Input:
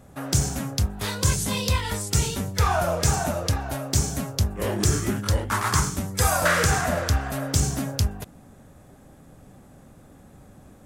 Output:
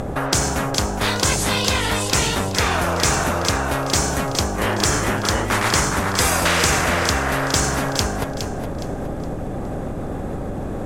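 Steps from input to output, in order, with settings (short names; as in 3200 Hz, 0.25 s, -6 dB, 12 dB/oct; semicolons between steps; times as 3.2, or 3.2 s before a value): tilt -4 dB/oct; upward compressor, threshold -23 dBFS; on a send: thinning echo 0.415 s, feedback 34%, level -9 dB; on the sum: spectral compressor 4:1; gain -5 dB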